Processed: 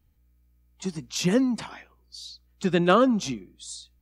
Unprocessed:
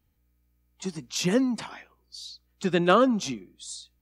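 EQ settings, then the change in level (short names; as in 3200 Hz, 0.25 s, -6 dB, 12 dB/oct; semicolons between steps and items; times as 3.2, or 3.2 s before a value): low shelf 120 Hz +8.5 dB; 0.0 dB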